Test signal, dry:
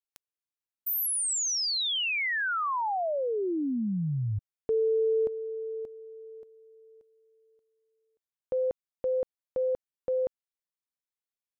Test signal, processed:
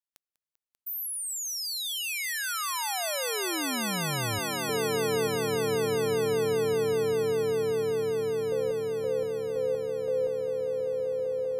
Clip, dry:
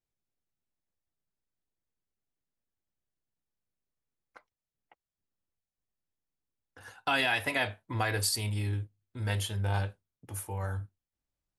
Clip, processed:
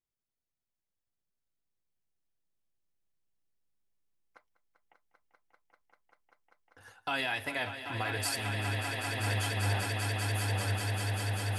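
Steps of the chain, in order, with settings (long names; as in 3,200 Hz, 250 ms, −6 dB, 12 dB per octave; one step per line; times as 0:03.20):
echo that builds up and dies away 196 ms, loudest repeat 8, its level −8 dB
level −5 dB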